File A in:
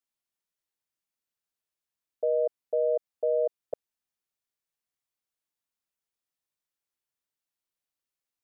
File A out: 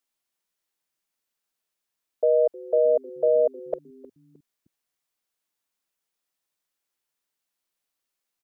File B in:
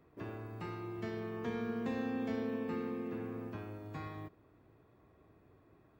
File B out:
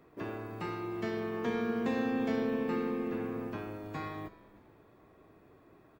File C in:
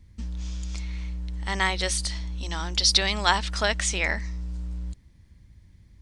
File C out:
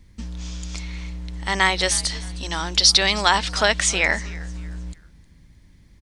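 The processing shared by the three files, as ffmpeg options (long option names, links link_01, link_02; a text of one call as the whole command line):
ffmpeg -i in.wav -filter_complex "[0:a]equalizer=frequency=80:width=0.78:gain=-8.5,asplit=2[link_01][link_02];[link_02]asplit=3[link_03][link_04][link_05];[link_03]adelay=310,afreqshift=-110,volume=-20.5dB[link_06];[link_04]adelay=620,afreqshift=-220,volume=-29.9dB[link_07];[link_05]adelay=930,afreqshift=-330,volume=-39.2dB[link_08];[link_06][link_07][link_08]amix=inputs=3:normalize=0[link_09];[link_01][link_09]amix=inputs=2:normalize=0,alimiter=level_in=7.5dB:limit=-1dB:release=50:level=0:latency=1,volume=-1dB" out.wav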